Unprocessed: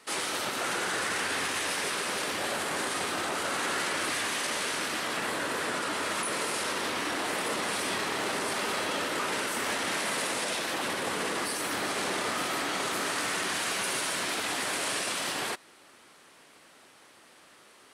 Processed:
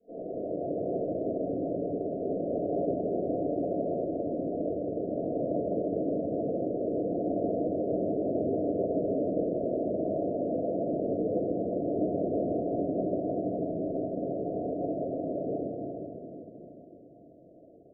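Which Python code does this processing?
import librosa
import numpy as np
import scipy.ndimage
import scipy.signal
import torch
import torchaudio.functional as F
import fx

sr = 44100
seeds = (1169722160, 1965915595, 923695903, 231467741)

y = scipy.signal.sosfilt(scipy.signal.cheby1(10, 1.0, 700.0, 'lowpass', fs=sr, output='sos'), x)
y = y + 10.0 ** (-7.0 / 20.0) * np.pad(y, (int(157 * sr / 1000.0), 0))[:len(y)]
y = fx.room_shoebox(y, sr, seeds[0], volume_m3=170.0, walls='hard', distance_m=1.8)
y = y * 10.0 ** (-7.0 / 20.0)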